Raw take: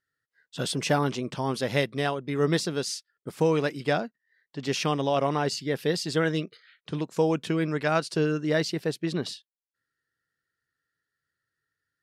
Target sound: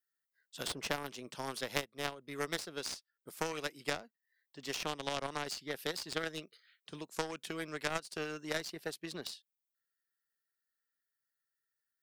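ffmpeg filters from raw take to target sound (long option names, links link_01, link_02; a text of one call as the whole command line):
ffmpeg -i in.wav -filter_complex "[0:a]aemphasis=mode=production:type=bsi,aeval=exprs='0.376*(cos(1*acos(clip(val(0)/0.376,-1,1)))-cos(1*PI/2))+0.133*(cos(3*acos(clip(val(0)/0.376,-1,1)))-cos(3*PI/2))+0.00944*(cos(5*acos(clip(val(0)/0.376,-1,1)))-cos(5*PI/2))':channel_layout=same,acrossover=split=450|1400|4500[link_01][link_02][link_03][link_04];[link_01]acompressor=threshold=-54dB:ratio=4[link_05];[link_02]acompressor=threshold=-51dB:ratio=4[link_06];[link_03]acompressor=threshold=-52dB:ratio=4[link_07];[link_04]acompressor=threshold=-59dB:ratio=4[link_08];[link_05][link_06][link_07][link_08]amix=inputs=4:normalize=0,volume=11.5dB" out.wav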